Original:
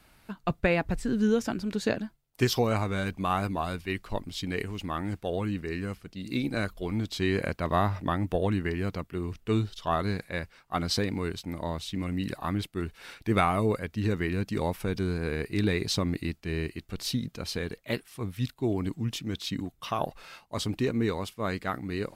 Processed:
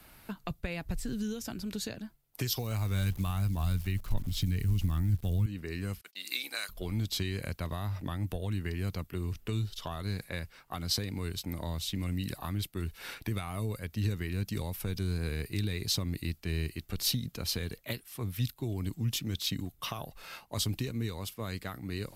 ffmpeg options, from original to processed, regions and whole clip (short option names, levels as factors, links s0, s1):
-filter_complex "[0:a]asettb=1/sr,asplit=3[s0][s1][s2];[s0]atrim=end=2.594[s3];[s1]atrim=start=2.59:end=5.46,asetpts=PTS-STARTPTS,afade=t=in:d=0.004:c=qsin,afade=t=out:st=2.866:d=0.004:c=qsin,asubboost=boost=12:cutoff=180,acrusher=bits=9:dc=4:mix=0:aa=0.000001[s4];[s2]atrim=start=5.456[s5];[s3][s4]acrossfade=d=0.004:c1=hsin:c2=qsin[s6];[s6][s5]acrossfade=d=0.004:c1=qsin:c2=hsin,asettb=1/sr,asplit=3[s7][s8][s9];[s7]atrim=end=6.014[s10];[s8]atrim=start=6.01:end=6.69,asetpts=PTS-STARTPTS,afade=t=in:d=0.004:c=qsin,afade=t=out:st=0.676:d=0.004:c=qsin,agate=range=0.0398:threshold=0.00316:ratio=16:release=100:detection=peak,highpass=750,tiltshelf=f=1300:g=-6[s11];[s9]atrim=start=6.686[s12];[s10][s11]acrossfade=d=0.004:c1=hsin:c2=qsin[s13];[s13][s12]acrossfade=d=0.004:c1=qsin:c2=hsin,alimiter=limit=0.0944:level=0:latency=1:release=428,equalizer=f=13000:t=o:w=0.43:g=10,acrossover=split=140|3000[s14][s15][s16];[s15]acompressor=threshold=0.00891:ratio=6[s17];[s14][s17][s16]amix=inputs=3:normalize=0,volume=1.41"